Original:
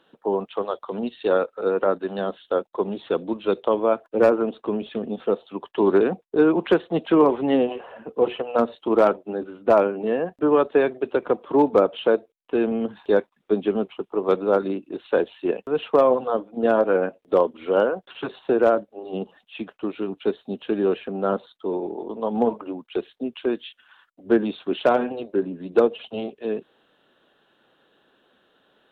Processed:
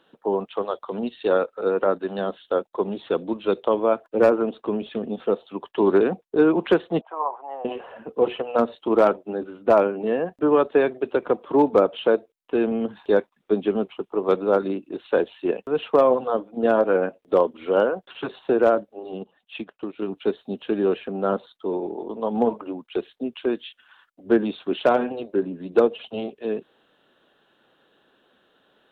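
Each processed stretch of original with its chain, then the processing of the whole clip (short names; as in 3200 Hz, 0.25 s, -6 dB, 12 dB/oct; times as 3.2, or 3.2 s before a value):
7.01–7.65 Butterworth band-pass 850 Hz, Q 2 + tilt +3 dB/oct
19.12–20.02 compressor 2.5:1, threshold -30 dBFS + transient shaper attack +3 dB, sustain -9 dB
whole clip: dry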